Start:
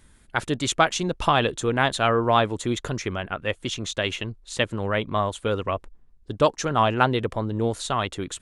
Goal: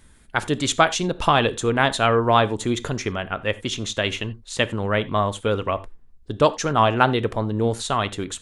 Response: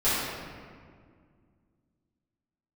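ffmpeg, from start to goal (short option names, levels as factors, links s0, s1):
-filter_complex "[0:a]asplit=2[s0][s1];[1:a]atrim=start_sample=2205,atrim=end_sample=4410[s2];[s1][s2]afir=irnorm=-1:irlink=0,volume=0.0501[s3];[s0][s3]amix=inputs=2:normalize=0,volume=1.26"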